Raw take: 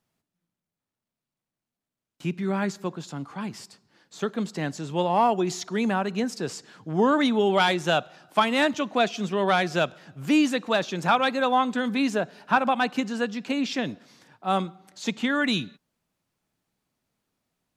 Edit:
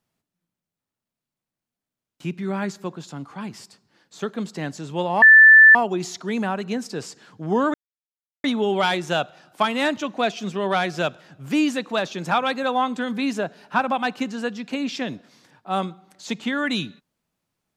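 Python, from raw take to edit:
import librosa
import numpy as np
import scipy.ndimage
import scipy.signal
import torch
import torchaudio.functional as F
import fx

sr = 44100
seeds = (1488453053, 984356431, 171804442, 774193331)

y = fx.edit(x, sr, fx.insert_tone(at_s=5.22, length_s=0.53, hz=1760.0, db=-6.0),
    fx.insert_silence(at_s=7.21, length_s=0.7), tone=tone)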